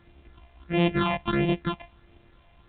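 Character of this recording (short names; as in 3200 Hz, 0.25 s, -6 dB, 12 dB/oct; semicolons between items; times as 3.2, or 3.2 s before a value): a buzz of ramps at a fixed pitch in blocks of 128 samples; phasing stages 6, 1.5 Hz, lowest notch 360–1400 Hz; a quantiser's noise floor 10-bit, dither none; A-law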